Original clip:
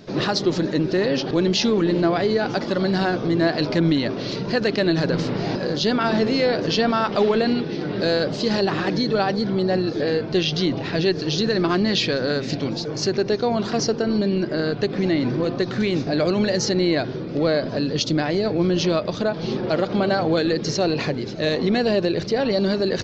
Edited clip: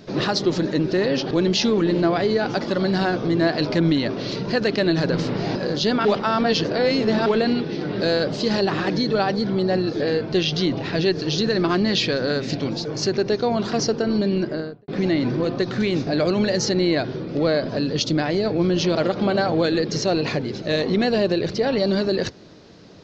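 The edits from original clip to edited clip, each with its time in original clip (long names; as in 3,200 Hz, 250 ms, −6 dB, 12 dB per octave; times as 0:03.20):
0:06.05–0:07.26: reverse
0:14.39–0:14.88: fade out and dull
0:18.95–0:19.68: remove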